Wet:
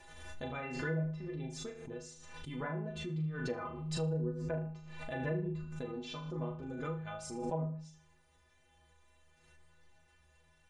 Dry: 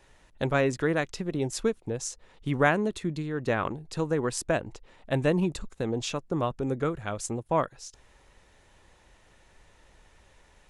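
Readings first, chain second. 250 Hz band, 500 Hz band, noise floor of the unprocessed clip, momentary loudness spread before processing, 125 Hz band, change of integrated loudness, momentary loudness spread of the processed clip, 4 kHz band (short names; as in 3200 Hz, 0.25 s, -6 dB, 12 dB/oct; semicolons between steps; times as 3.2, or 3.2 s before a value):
-9.5 dB, -12.0 dB, -60 dBFS, 9 LU, -5.5 dB, -10.0 dB, 11 LU, -9.5 dB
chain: metallic resonator 74 Hz, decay 0.75 s, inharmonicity 0.03; treble ducked by the level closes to 450 Hz, closed at -32 dBFS; on a send: flutter echo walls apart 6.5 m, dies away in 0.41 s; on the sum: backwards sustainer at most 44 dB/s; gain +1 dB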